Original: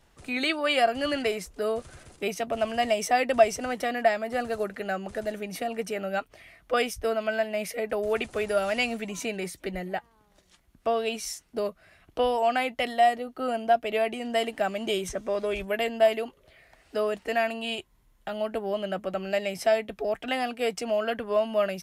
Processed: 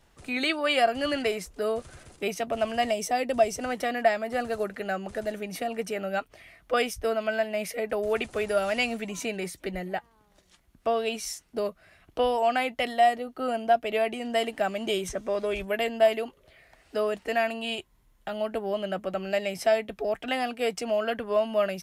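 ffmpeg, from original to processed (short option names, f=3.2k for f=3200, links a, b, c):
-filter_complex "[0:a]asettb=1/sr,asplit=3[a][b][c];[a]atrim=end=2.914[d];[b]atrim=start=2.91:end=3.58,asetpts=PTS-STARTPTS,afade=t=in:d=0.004:c=qsin,afade=t=out:st=0.666:d=0.004:c=qsin,equalizer=f=1.6k:w=0.58:g=-7[e];[c]atrim=start=3.576[f];[d][e]acrossfade=d=0.004:c1=hsin:c2=qsin[g];[g][f]acrossfade=d=0.004:c1=qsin:c2=hsin"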